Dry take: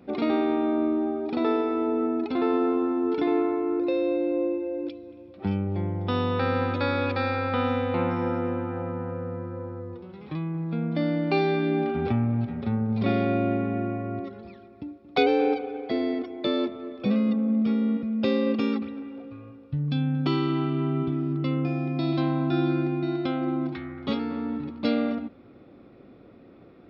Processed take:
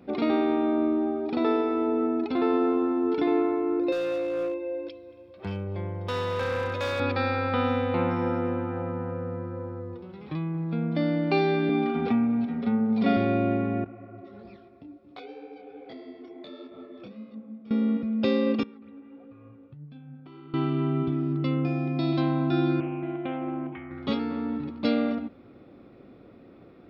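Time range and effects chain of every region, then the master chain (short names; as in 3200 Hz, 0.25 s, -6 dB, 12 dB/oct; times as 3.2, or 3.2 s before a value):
3.92–7 low shelf 440 Hz -6.5 dB + comb 1.9 ms, depth 54% + hard clip -24.5 dBFS
11.69–13.17 HPF 150 Hz + comb 4.2 ms, depth 68%
13.84–17.71 compressor 10:1, threshold -36 dBFS + detuned doubles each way 49 cents
18.63–20.54 LPF 2700 Hz + compressor, threshold -40 dBFS + flange 1.5 Hz, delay 3.7 ms, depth 7.5 ms, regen +57%
22.8–23.91 rippled Chebyshev low-pass 3200 Hz, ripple 6 dB + Doppler distortion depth 0.13 ms
whole clip: dry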